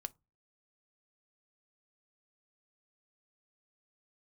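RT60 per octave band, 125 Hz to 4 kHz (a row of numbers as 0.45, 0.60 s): 0.40, 0.40, 0.25, 0.25, 0.15, 0.15 s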